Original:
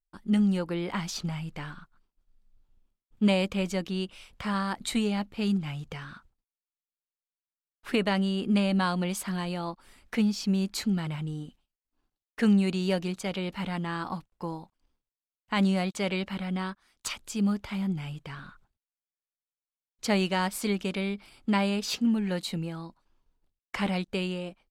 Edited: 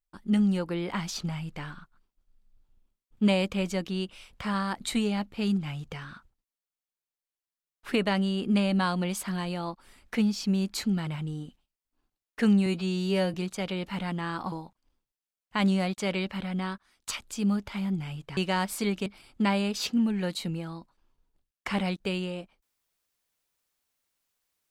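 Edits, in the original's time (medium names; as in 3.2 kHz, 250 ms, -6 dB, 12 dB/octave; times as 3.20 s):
12.66–13.00 s: stretch 2×
14.18–14.49 s: delete
18.34–20.20 s: delete
20.89–21.14 s: delete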